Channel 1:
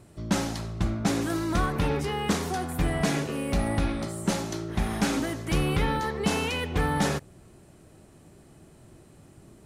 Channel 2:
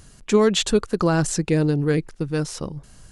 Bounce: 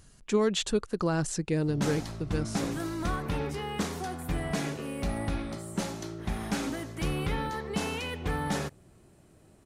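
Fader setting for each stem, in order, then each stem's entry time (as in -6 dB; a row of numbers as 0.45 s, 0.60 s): -5.5 dB, -8.5 dB; 1.50 s, 0.00 s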